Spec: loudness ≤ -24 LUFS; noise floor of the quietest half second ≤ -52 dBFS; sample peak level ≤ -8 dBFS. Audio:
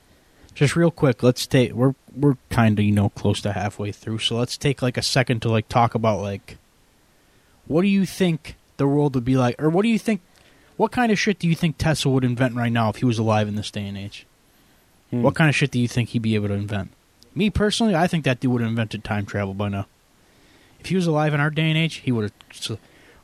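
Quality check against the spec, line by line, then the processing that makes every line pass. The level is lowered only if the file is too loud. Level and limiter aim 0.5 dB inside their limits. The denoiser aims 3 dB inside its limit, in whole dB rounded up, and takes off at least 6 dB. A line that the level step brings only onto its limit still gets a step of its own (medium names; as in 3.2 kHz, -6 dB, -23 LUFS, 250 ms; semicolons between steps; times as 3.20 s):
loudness -21.5 LUFS: fail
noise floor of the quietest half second -58 dBFS: pass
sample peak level -4.0 dBFS: fail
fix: trim -3 dB; peak limiter -8.5 dBFS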